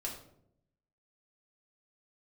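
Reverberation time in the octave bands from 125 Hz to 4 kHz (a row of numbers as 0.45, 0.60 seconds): 1.1, 1.0, 0.85, 0.60, 0.50, 0.40 seconds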